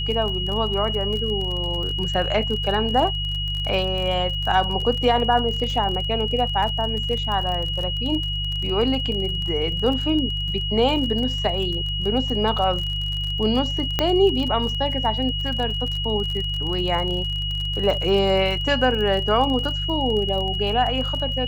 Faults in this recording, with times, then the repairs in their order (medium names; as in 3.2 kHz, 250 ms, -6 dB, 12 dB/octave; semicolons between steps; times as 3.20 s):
crackle 37 per s -27 dBFS
hum 50 Hz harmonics 3 -28 dBFS
whine 2.9 kHz -26 dBFS
13.99 s: pop -6 dBFS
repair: de-click; de-hum 50 Hz, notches 3; band-stop 2.9 kHz, Q 30